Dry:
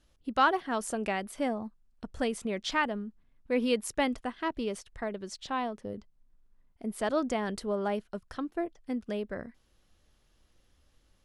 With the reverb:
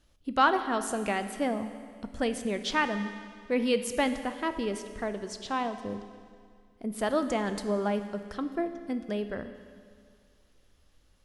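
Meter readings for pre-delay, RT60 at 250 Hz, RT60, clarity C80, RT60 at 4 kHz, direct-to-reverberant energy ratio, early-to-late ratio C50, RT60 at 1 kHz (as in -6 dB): 10 ms, 2.1 s, 2.1 s, 11.0 dB, 2.0 s, 9.0 dB, 10.0 dB, 2.1 s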